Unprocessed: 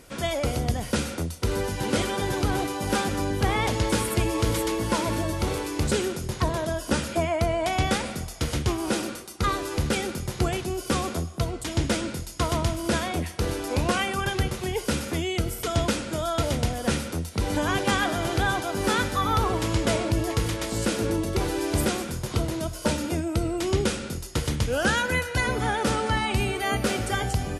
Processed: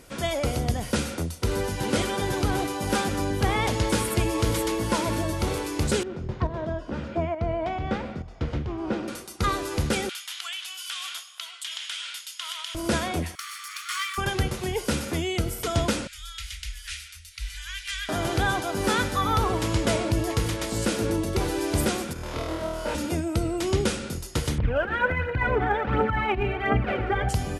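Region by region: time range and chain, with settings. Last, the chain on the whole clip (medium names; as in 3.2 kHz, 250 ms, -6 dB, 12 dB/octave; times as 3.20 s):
6.03–9.08 s: volume shaper 137 bpm, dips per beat 1, -9 dB, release 227 ms + tape spacing loss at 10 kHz 34 dB
10.09–12.75 s: high-pass 1.3 kHz 24 dB/octave + peaking EQ 3.2 kHz +12.5 dB 0.57 oct + compression 10:1, threshold -29 dBFS
13.35–14.18 s: comb filter that takes the minimum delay 0.91 ms + brick-wall FIR high-pass 1.1 kHz
16.07–18.09 s: inverse Chebyshev band-stop 170–600 Hz, stop band 70 dB + treble shelf 4.9 kHz -7 dB
22.13–22.95 s: tone controls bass -10 dB, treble -12 dB + compression 1.5:1, threshold -37 dBFS + flutter echo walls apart 4.3 m, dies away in 1.2 s
24.58–27.29 s: compressor with a negative ratio -25 dBFS, ratio -0.5 + low-pass 2.4 kHz 24 dB/octave + phaser 1.4 Hz, delay 2.9 ms, feedback 55%
whole clip: none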